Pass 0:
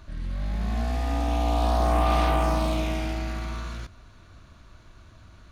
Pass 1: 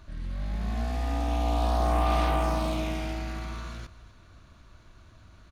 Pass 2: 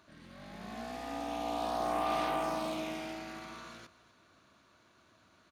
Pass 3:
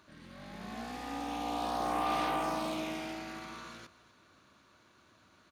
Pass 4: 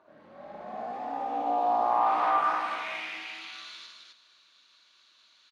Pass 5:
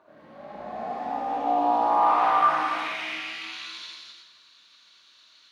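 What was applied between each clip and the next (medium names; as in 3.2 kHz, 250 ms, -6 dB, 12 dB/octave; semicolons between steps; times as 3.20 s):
delay 248 ms -18 dB; trim -3 dB
high-pass 240 Hz 12 dB/octave; trim -4.5 dB
band-stop 670 Hz, Q 12; trim +1.5 dB
band-pass sweep 660 Hz -> 3.9 kHz, 1.62–3.60 s; on a send: loudspeakers at several distances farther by 20 m -3 dB, 89 m -3 dB; on the sum: trim +9 dB
on a send at -4 dB: treble shelf 4.2 kHz +11.5 dB + reverberation RT60 0.55 s, pre-delay 76 ms; on the sum: trim +2.5 dB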